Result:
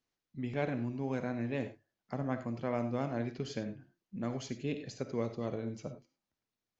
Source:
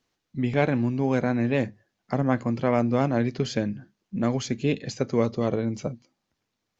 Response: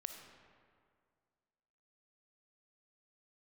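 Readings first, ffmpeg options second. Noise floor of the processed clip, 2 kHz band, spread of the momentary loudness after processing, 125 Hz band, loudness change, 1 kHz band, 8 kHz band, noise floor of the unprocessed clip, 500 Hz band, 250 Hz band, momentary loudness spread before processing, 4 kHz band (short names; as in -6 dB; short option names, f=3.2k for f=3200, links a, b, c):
under -85 dBFS, -11.5 dB, 9 LU, -11.5 dB, -11.5 dB, -11.5 dB, n/a, -81 dBFS, -11.5 dB, -12.0 dB, 10 LU, -11.5 dB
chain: -filter_complex "[1:a]atrim=start_sample=2205,afade=t=out:st=0.16:d=0.01,atrim=end_sample=7497[a];[0:a][a]afir=irnorm=-1:irlink=0,volume=-8dB"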